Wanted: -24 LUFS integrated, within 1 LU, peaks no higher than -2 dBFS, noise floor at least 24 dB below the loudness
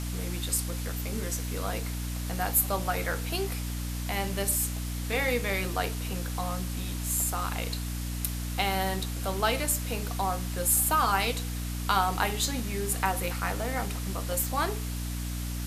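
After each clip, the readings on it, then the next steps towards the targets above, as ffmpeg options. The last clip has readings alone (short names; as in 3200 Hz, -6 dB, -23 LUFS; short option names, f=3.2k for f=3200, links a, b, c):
hum 60 Hz; harmonics up to 300 Hz; hum level -31 dBFS; noise floor -33 dBFS; noise floor target -54 dBFS; loudness -29.5 LUFS; peak -9.5 dBFS; loudness target -24.0 LUFS
-> -af "bandreject=f=60:t=h:w=4,bandreject=f=120:t=h:w=4,bandreject=f=180:t=h:w=4,bandreject=f=240:t=h:w=4,bandreject=f=300:t=h:w=4"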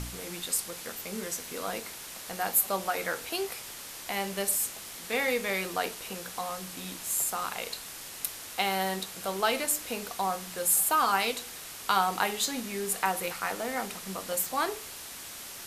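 hum none; noise floor -43 dBFS; noise floor target -55 dBFS
-> -af "afftdn=nr=12:nf=-43"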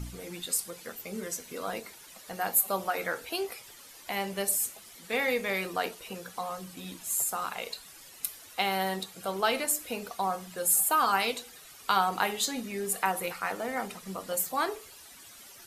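noise floor -51 dBFS; noise floor target -55 dBFS
-> -af "afftdn=nr=6:nf=-51"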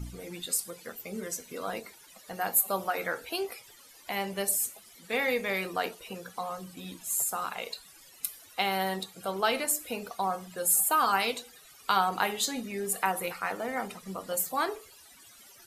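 noise floor -55 dBFS; loudness -30.5 LUFS; peak -10.5 dBFS; loudness target -24.0 LUFS
-> -af "volume=6.5dB"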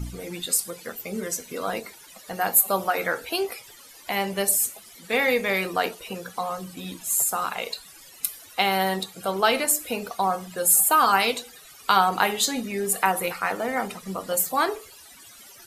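loudness -24.0 LUFS; peak -4.0 dBFS; noise floor -48 dBFS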